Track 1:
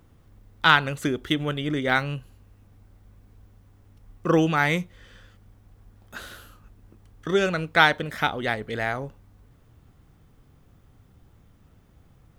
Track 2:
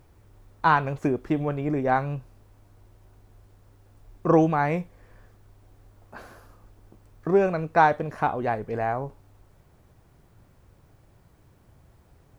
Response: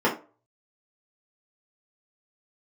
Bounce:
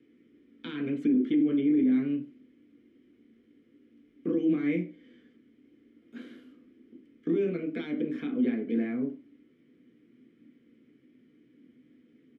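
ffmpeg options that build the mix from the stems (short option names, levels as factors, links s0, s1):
-filter_complex "[0:a]highshelf=f=4400:g=10,volume=0.422[s0];[1:a]alimiter=limit=0.141:level=0:latency=1:release=21,adelay=1.9,volume=1.19,asplit=3[s1][s2][s3];[s2]volume=0.447[s4];[s3]apad=whole_len=546222[s5];[s0][s5]sidechaincompress=threshold=0.0355:ratio=8:attack=12:release=147[s6];[2:a]atrim=start_sample=2205[s7];[s4][s7]afir=irnorm=-1:irlink=0[s8];[s6][s1][s8]amix=inputs=3:normalize=0,acrossover=split=370|3000[s9][s10][s11];[s10]acompressor=threshold=0.2:ratio=6[s12];[s9][s12][s11]amix=inputs=3:normalize=0,asplit=3[s13][s14][s15];[s13]bandpass=f=270:t=q:w=8,volume=1[s16];[s14]bandpass=f=2290:t=q:w=8,volume=0.501[s17];[s15]bandpass=f=3010:t=q:w=8,volume=0.355[s18];[s16][s17][s18]amix=inputs=3:normalize=0,alimiter=limit=0.119:level=0:latency=1:release=13"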